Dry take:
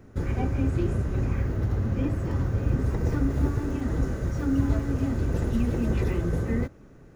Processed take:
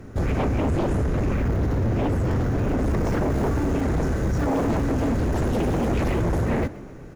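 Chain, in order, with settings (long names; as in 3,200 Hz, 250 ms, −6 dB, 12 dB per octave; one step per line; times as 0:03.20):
sine wavefolder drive 14 dB, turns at −10.5 dBFS
echo with shifted repeats 127 ms, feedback 53%, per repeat +63 Hz, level −19.5 dB
level −8.5 dB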